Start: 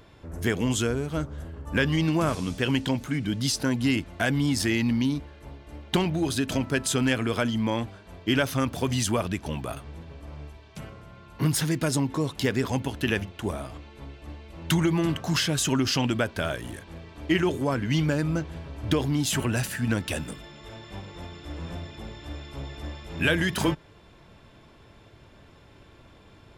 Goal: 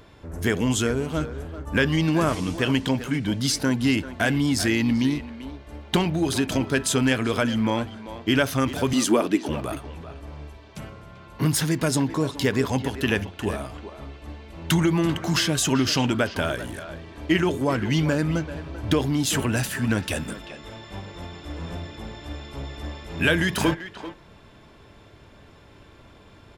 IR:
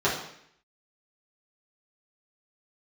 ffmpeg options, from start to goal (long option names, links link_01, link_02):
-filter_complex "[0:a]asettb=1/sr,asplit=3[link_01][link_02][link_03];[link_01]atrim=end=8.934[link_04];[link_02]atrim=start=8.93:end=9.49,asetpts=PTS-STARTPTS,afade=type=in:duration=0.004:curve=qsin,afade=type=out:start_time=0.556:duration=0.004:curve=qsin,highpass=frequency=300:width_type=q:width=3.6[link_05];[link_03]atrim=start=9.486[link_06];[link_04][link_05]acrossfade=duration=0.004:curve1=hsin:curve2=qsin[link_07];[link_07][link_06]acrossfade=duration=0.004:curve1=qsin:curve2=hsin,asplit=2[link_08][link_09];[link_09]adelay=390,highpass=300,lowpass=3400,asoftclip=type=hard:threshold=-20.5dB,volume=-11dB[link_10];[link_08][link_10]amix=inputs=2:normalize=0,asplit=2[link_11][link_12];[1:a]atrim=start_sample=2205,atrim=end_sample=3528[link_13];[link_12][link_13]afir=irnorm=-1:irlink=0,volume=-31.5dB[link_14];[link_11][link_14]amix=inputs=2:normalize=0,volume=2.5dB"